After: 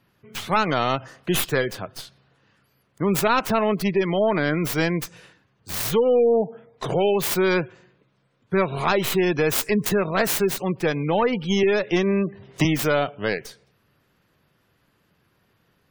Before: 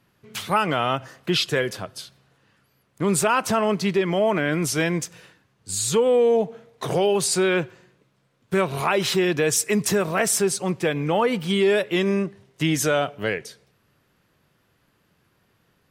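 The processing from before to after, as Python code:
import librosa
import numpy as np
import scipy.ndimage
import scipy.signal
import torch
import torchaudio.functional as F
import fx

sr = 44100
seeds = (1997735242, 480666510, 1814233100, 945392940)

y = fx.tracing_dist(x, sr, depth_ms=0.43)
y = fx.spec_gate(y, sr, threshold_db=-30, keep='strong')
y = fx.band_squash(y, sr, depth_pct=100, at=(11.63, 12.65))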